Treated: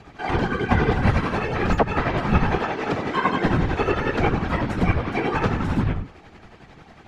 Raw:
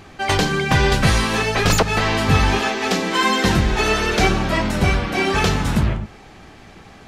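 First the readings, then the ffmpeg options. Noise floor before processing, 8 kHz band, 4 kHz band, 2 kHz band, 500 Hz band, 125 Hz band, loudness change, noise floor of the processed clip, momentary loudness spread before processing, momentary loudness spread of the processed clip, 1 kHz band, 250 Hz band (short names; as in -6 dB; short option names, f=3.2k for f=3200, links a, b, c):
-44 dBFS, under -20 dB, -14.0 dB, -6.5 dB, -3.0 dB, -3.5 dB, -4.5 dB, -48 dBFS, 4 LU, 4 LU, -3.5 dB, -2.5 dB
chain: -filter_complex "[0:a]bandreject=f=600:w=12,afftfilt=real='hypot(re,im)*cos(2*PI*random(0))':imag='hypot(re,im)*sin(2*PI*random(1))':win_size=512:overlap=0.75,acrossover=split=120|2300[a][b][c];[c]acompressor=threshold=-42dB:ratio=12[d];[a][b][d]amix=inputs=3:normalize=0,aemphasis=mode=reproduction:type=50kf,tremolo=f=11:d=0.5,volume=5.5dB"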